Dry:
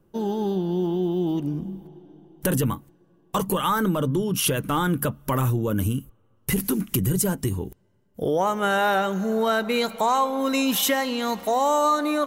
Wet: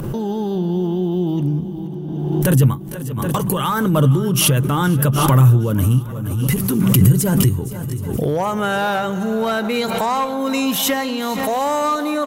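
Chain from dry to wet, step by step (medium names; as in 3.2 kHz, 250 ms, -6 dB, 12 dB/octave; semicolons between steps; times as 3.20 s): de-hum 193.4 Hz, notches 2; one-sided clip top -17 dBFS; delay 482 ms -19.5 dB; upward compressor, threshold -25 dBFS; peaking EQ 130 Hz +11.5 dB 0.67 oct; shuffle delay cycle 772 ms, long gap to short 1.5:1, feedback 47%, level -18.5 dB; swell ahead of each attack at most 29 dB/s; trim +2 dB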